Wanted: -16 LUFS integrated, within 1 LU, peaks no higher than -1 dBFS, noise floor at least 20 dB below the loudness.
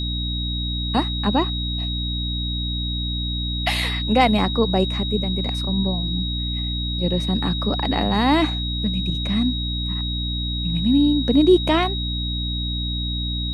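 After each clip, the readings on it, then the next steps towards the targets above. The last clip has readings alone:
hum 60 Hz; harmonics up to 300 Hz; hum level -24 dBFS; steady tone 3800 Hz; tone level -27 dBFS; loudness -21.5 LUFS; peak -3.0 dBFS; loudness target -16.0 LUFS
-> notches 60/120/180/240/300 Hz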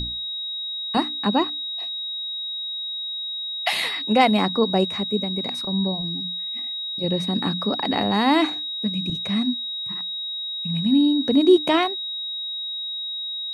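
hum none; steady tone 3800 Hz; tone level -27 dBFS
-> notch 3800 Hz, Q 30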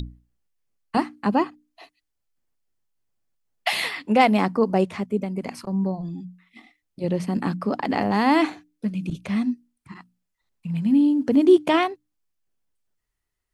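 steady tone none; loudness -22.5 LUFS; peak -4.5 dBFS; loudness target -16.0 LUFS
-> gain +6.5 dB; limiter -1 dBFS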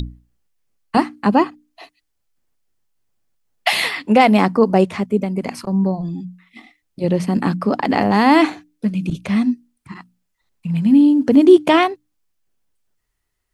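loudness -16.5 LUFS; peak -1.0 dBFS; noise floor -72 dBFS

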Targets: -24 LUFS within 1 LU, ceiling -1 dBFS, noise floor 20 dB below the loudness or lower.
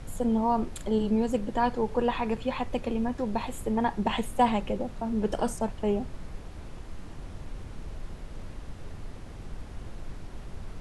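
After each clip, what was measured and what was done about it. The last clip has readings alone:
noise floor -43 dBFS; noise floor target -49 dBFS; loudness -29.0 LUFS; peak -12.0 dBFS; loudness target -24.0 LUFS
-> noise print and reduce 6 dB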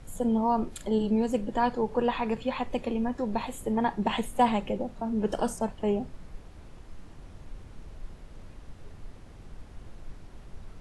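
noise floor -49 dBFS; loudness -29.0 LUFS; peak -12.0 dBFS; loudness target -24.0 LUFS
-> gain +5 dB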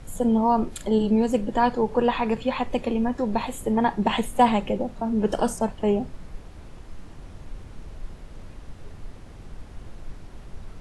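loudness -24.0 LUFS; peak -7.0 dBFS; noise floor -44 dBFS

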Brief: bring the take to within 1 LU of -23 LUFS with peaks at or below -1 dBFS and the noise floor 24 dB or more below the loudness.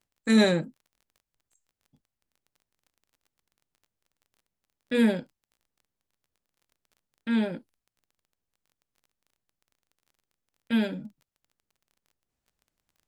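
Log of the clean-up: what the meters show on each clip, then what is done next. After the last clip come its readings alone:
ticks 23/s; loudness -26.0 LUFS; peak -9.5 dBFS; loudness target -23.0 LUFS
-> de-click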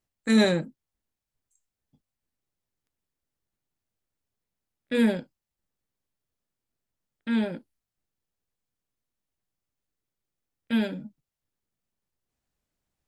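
ticks 0.076/s; loudness -26.0 LUFS; peak -9.5 dBFS; loudness target -23.0 LUFS
-> gain +3 dB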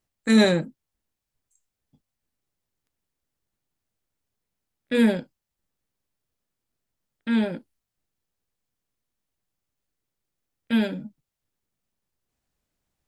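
loudness -23.0 LUFS; peak -6.5 dBFS; noise floor -85 dBFS

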